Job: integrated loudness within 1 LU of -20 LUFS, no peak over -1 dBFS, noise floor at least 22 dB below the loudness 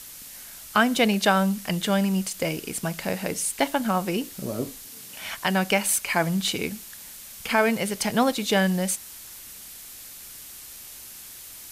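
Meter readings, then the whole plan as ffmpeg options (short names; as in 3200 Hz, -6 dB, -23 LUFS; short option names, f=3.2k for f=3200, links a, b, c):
noise floor -43 dBFS; noise floor target -47 dBFS; loudness -24.5 LUFS; peak -8.0 dBFS; loudness target -20.0 LUFS
-> -af "afftdn=nr=6:nf=-43"
-af "volume=4.5dB"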